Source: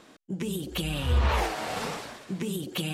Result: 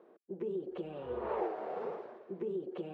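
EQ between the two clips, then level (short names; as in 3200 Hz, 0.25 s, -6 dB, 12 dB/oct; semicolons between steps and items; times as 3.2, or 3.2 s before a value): ladder band-pass 410 Hz, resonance 60%; bell 290 Hz -14 dB 0.44 oct; +8.0 dB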